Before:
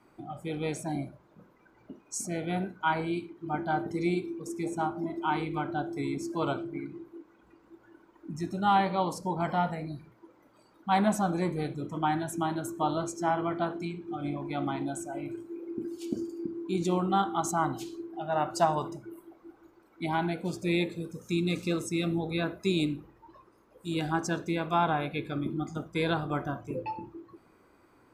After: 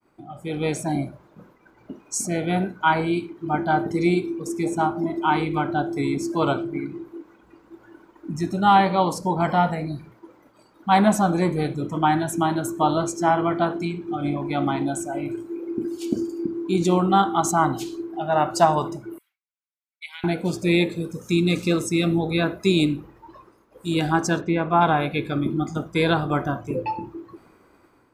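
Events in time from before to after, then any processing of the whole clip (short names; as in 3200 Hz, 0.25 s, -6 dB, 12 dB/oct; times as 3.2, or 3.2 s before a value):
19.18–20.24 ladder high-pass 2000 Hz, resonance 45%
24.4–24.8 LPF 3100 Hz -> 1500 Hz
whole clip: expander -58 dBFS; AGC gain up to 8.5 dB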